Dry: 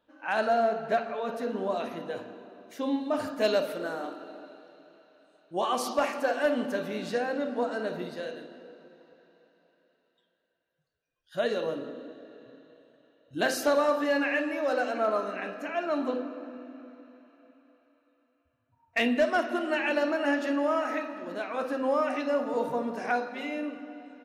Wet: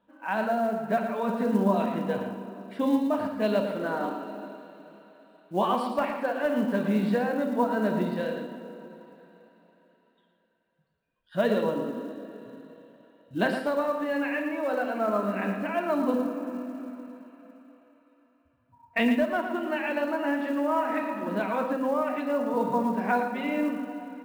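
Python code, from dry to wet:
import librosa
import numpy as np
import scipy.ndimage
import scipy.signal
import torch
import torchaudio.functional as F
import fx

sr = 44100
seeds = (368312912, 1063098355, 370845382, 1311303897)

p1 = fx.rider(x, sr, range_db=5, speed_s=0.5)
p2 = np.convolve(p1, np.full(7, 1.0 / 7))[:len(p1)]
p3 = fx.small_body(p2, sr, hz=(200.0, 960.0), ring_ms=90, db=13)
p4 = fx.quant_float(p3, sr, bits=4)
y = p4 + fx.echo_single(p4, sr, ms=113, db=-8.5, dry=0)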